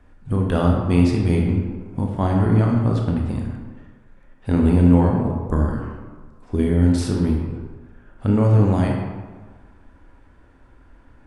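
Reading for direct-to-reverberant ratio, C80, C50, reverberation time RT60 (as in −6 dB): 0.0 dB, 4.0 dB, 2.5 dB, 1.5 s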